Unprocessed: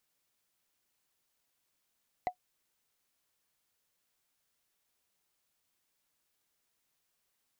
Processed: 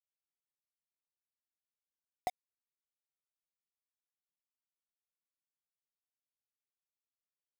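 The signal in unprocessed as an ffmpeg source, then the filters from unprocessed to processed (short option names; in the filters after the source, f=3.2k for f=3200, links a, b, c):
-f lavfi -i "aevalsrc='0.0708*pow(10,-3*t/0.09)*sin(2*PI*730*t)+0.0211*pow(10,-3*t/0.027)*sin(2*PI*2012.6*t)+0.00631*pow(10,-3*t/0.012)*sin(2*PI*3944.9*t)+0.00188*pow(10,-3*t/0.007)*sin(2*PI*6521.1*t)+0.000562*pow(10,-3*t/0.004)*sin(2*PI*9738.2*t)':d=0.45:s=44100"
-af "acrusher=bits=6:mix=0:aa=0.000001"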